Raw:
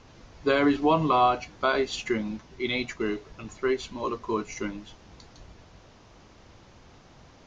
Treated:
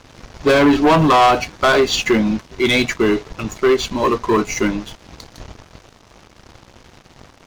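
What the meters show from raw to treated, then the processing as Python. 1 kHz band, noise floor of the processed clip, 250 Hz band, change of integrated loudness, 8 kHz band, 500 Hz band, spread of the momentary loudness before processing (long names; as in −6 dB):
+9.5 dB, −49 dBFS, +11.5 dB, +11.0 dB, can't be measured, +11.0 dB, 13 LU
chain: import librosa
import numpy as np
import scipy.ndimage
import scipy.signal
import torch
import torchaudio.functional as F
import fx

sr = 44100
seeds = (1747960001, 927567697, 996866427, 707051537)

y = fx.leveller(x, sr, passes=3)
y = y * 10.0 ** (4.0 / 20.0)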